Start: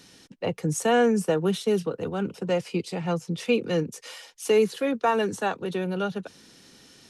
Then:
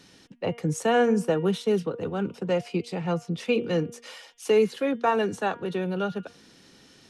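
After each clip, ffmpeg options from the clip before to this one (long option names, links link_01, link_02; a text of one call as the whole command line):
ffmpeg -i in.wav -af "highshelf=frequency=6400:gain=-8.5,bandreject=frequency=236.8:width_type=h:width=4,bandreject=frequency=473.6:width_type=h:width=4,bandreject=frequency=710.4:width_type=h:width=4,bandreject=frequency=947.2:width_type=h:width=4,bandreject=frequency=1184:width_type=h:width=4,bandreject=frequency=1420.8:width_type=h:width=4,bandreject=frequency=1657.6:width_type=h:width=4,bandreject=frequency=1894.4:width_type=h:width=4,bandreject=frequency=2131.2:width_type=h:width=4,bandreject=frequency=2368:width_type=h:width=4,bandreject=frequency=2604.8:width_type=h:width=4,bandreject=frequency=2841.6:width_type=h:width=4,bandreject=frequency=3078.4:width_type=h:width=4,bandreject=frequency=3315.2:width_type=h:width=4,bandreject=frequency=3552:width_type=h:width=4" out.wav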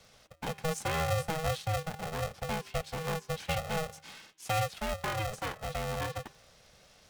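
ffmpeg -i in.wav -filter_complex "[0:a]acrossover=split=380|1300|1700[link_01][link_02][link_03][link_04];[link_02]acompressor=threshold=-35dB:ratio=6[link_05];[link_01][link_05][link_03][link_04]amix=inputs=4:normalize=0,aeval=exprs='val(0)*sgn(sin(2*PI*320*n/s))':channel_layout=same,volume=-5.5dB" out.wav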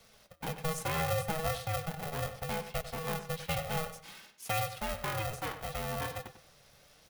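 ffmpeg -i in.wav -filter_complex "[0:a]flanger=delay=4.4:depth=2.8:regen=63:speed=0.67:shape=sinusoidal,aexciter=amount=1.7:drive=7.6:freq=10000,asplit=2[link_01][link_02];[link_02]adelay=96,lowpass=frequency=4000:poles=1,volume=-11dB,asplit=2[link_03][link_04];[link_04]adelay=96,lowpass=frequency=4000:poles=1,volume=0.28,asplit=2[link_05][link_06];[link_06]adelay=96,lowpass=frequency=4000:poles=1,volume=0.28[link_07];[link_01][link_03][link_05][link_07]amix=inputs=4:normalize=0,volume=2.5dB" out.wav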